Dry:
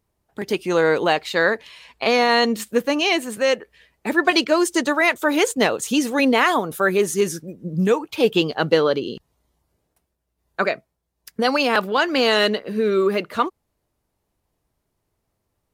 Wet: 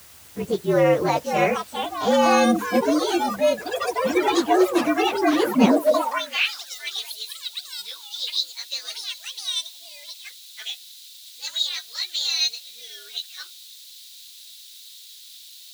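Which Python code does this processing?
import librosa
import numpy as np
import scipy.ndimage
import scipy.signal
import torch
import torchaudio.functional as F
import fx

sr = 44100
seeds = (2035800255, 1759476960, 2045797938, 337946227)

p1 = fx.partial_stretch(x, sr, pct=115)
p2 = fx.tilt_shelf(p1, sr, db=4.5, hz=1400.0)
p3 = fx.echo_pitch(p2, sr, ms=790, semitones=6, count=3, db_per_echo=-6.0)
p4 = fx.quant_dither(p3, sr, seeds[0], bits=6, dither='triangular')
p5 = p3 + (p4 * 10.0 ** (-6.0 / 20.0))
p6 = fx.filter_sweep_highpass(p5, sr, from_hz=78.0, to_hz=3800.0, start_s=5.34, end_s=6.52, q=5.2)
y = p6 * 10.0 ** (-5.5 / 20.0)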